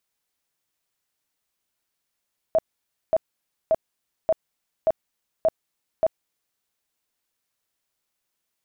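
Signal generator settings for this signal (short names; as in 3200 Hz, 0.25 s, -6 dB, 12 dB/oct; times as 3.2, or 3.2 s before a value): tone bursts 644 Hz, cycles 23, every 0.58 s, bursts 7, -15 dBFS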